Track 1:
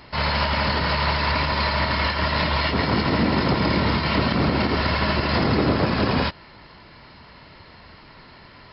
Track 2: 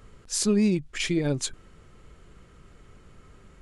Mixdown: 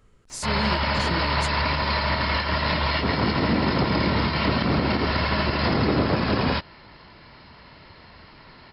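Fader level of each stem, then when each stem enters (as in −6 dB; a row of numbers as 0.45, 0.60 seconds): −1.5, −7.5 decibels; 0.30, 0.00 seconds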